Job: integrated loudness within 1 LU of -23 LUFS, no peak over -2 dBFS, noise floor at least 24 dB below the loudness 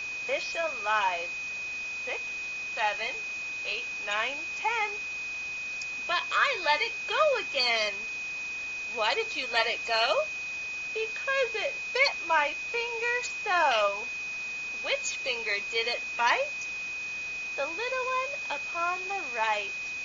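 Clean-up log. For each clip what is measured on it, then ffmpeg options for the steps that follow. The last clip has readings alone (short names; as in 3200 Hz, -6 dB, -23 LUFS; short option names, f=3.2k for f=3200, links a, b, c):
steady tone 2500 Hz; tone level -33 dBFS; noise floor -36 dBFS; noise floor target -53 dBFS; loudness -28.5 LUFS; peak -9.5 dBFS; loudness target -23.0 LUFS
-> -af "bandreject=f=2.5k:w=30"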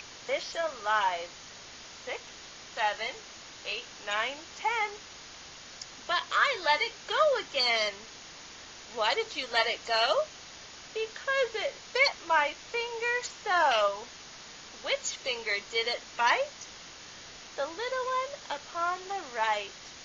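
steady tone none; noise floor -48 dBFS; noise floor target -54 dBFS
-> -af "afftdn=nr=6:nf=-48"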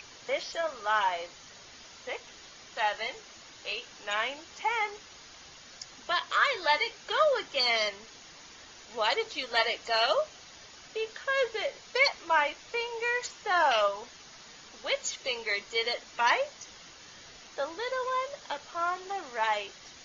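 noise floor -51 dBFS; noise floor target -54 dBFS
-> -af "afftdn=nr=6:nf=-51"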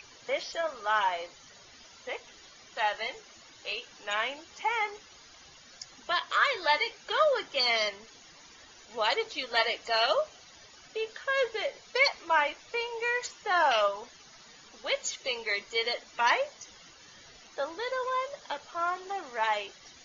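noise floor -54 dBFS; loudness -29.5 LUFS; peak -10.5 dBFS; loudness target -23.0 LUFS
-> -af "volume=6.5dB"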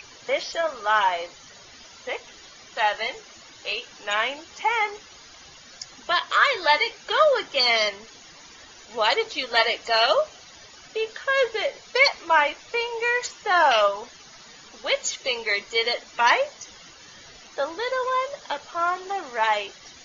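loudness -23.0 LUFS; peak -4.0 dBFS; noise floor -48 dBFS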